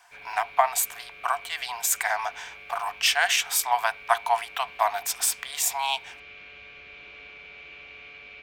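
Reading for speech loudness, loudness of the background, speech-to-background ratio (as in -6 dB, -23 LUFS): -25.5 LUFS, -43.0 LUFS, 17.5 dB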